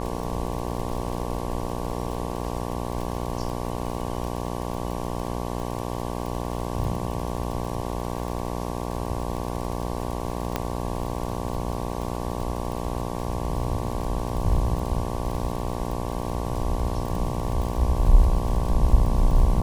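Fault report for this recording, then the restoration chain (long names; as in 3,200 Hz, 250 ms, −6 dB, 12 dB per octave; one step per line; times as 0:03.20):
mains buzz 60 Hz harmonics 19 −30 dBFS
surface crackle 49 per second −30 dBFS
0:10.56: click −10 dBFS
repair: click removal
hum removal 60 Hz, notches 19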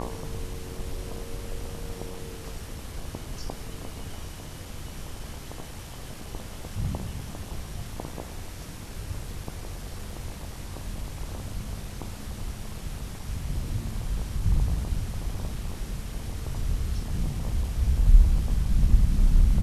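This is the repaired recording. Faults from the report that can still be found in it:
none of them is left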